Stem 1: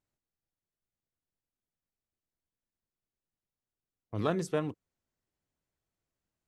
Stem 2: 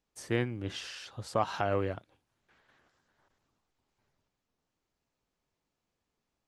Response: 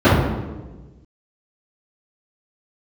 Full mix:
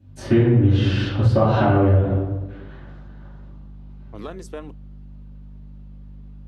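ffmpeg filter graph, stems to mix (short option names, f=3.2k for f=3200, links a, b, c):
-filter_complex "[0:a]highpass=220,alimiter=limit=-22.5dB:level=0:latency=1:release=311,volume=0.5dB[a];[1:a]equalizer=f=3.7k:w=0.95:g=6.5,acompressor=threshold=-34dB:ratio=3,aeval=exprs='val(0)+0.000447*(sin(2*PI*50*n/s)+sin(2*PI*2*50*n/s)/2+sin(2*PI*3*50*n/s)/3+sin(2*PI*4*50*n/s)/4+sin(2*PI*5*50*n/s)/5)':c=same,volume=-6dB,asplit=2[b][c];[c]volume=-4dB[d];[2:a]atrim=start_sample=2205[e];[d][e]afir=irnorm=-1:irlink=0[f];[a][b][f]amix=inputs=3:normalize=0,acompressor=threshold=-12dB:ratio=6"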